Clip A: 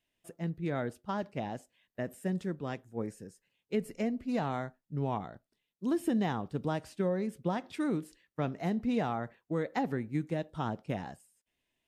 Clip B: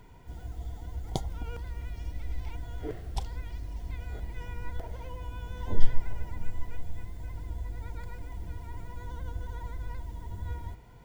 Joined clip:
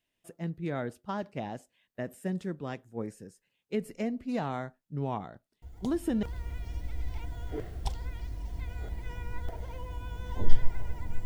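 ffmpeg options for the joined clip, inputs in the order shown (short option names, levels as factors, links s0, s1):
-filter_complex "[1:a]asplit=2[s0][s1];[0:a]apad=whole_dur=11.25,atrim=end=11.25,atrim=end=6.232[s2];[s1]atrim=start=1.538:end=6.56[s3];[s0]atrim=start=0.93:end=1.54,asetpts=PTS-STARTPTS,volume=0.299,afade=t=in:d=0.004:c=hsin,afade=t=out:st=0.606:d=0.004:c=hsin,adelay=5620[s4];[s2][s3]acrossfade=d=0.004:c1=hsin:c2=hsin[s5];[s5][s4]amix=inputs=2:normalize=0"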